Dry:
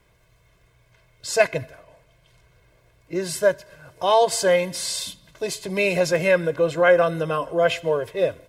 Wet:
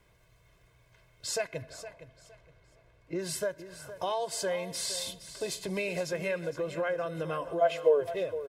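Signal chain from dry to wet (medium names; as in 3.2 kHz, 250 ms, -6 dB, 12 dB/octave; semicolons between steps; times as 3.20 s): 1.62–3.19 s: low-pass 3.2 kHz 6 dB/octave; compression 4:1, threshold -27 dBFS, peak gain reduction 14 dB; 7.60–8.00 s: resonant high-pass 740 Hz -> 360 Hz, resonance Q 4.9; feedback delay 464 ms, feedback 25%, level -13 dB; trim -4 dB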